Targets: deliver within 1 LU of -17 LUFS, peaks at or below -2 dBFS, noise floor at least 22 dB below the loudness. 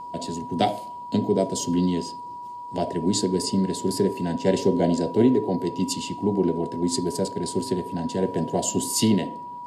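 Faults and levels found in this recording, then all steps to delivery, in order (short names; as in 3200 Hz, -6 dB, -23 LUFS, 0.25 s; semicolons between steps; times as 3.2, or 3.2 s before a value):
steady tone 970 Hz; tone level -34 dBFS; loudness -24.5 LUFS; peak -6.5 dBFS; loudness target -17.0 LUFS
-> notch 970 Hz, Q 30; gain +7.5 dB; limiter -2 dBFS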